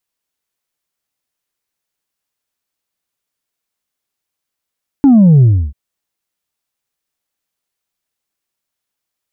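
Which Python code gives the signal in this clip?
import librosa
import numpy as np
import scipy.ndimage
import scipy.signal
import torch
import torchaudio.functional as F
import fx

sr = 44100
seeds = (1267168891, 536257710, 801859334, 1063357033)

y = fx.sub_drop(sr, level_db=-4, start_hz=290.0, length_s=0.69, drive_db=2.0, fade_s=0.31, end_hz=65.0)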